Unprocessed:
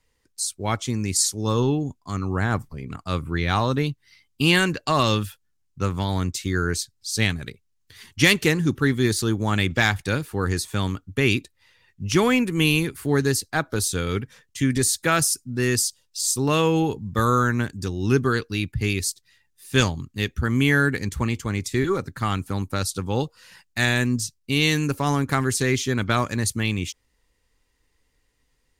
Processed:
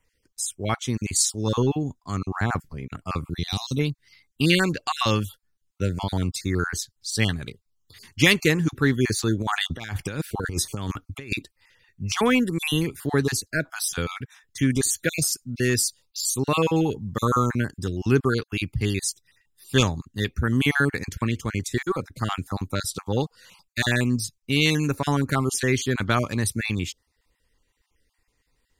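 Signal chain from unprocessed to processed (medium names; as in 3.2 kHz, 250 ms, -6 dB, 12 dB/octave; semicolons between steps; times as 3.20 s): random holes in the spectrogram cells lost 29%; 3.30–3.79 s: FFT filter 220 Hz 0 dB, 1.5 kHz -19 dB, 4.7 kHz +8 dB; 9.42–11.32 s: compressor with a negative ratio -27 dBFS, ratio -0.5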